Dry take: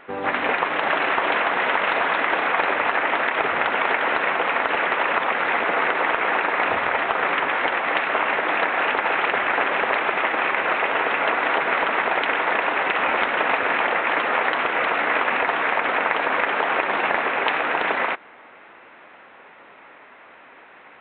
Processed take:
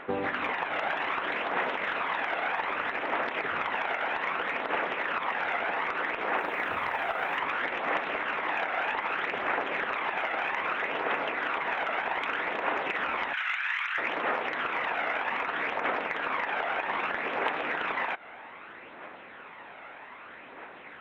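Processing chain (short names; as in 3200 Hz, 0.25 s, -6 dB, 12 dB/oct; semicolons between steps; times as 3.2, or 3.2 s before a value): 13.33–13.98 HPF 1400 Hz 24 dB/oct; compressor 12:1, threshold -27 dBFS, peak gain reduction 12 dB; 6.37–7.38 companded quantiser 8-bit; soft clip -16 dBFS, distortion -28 dB; phaser 0.63 Hz, delay 1.5 ms, feedback 38%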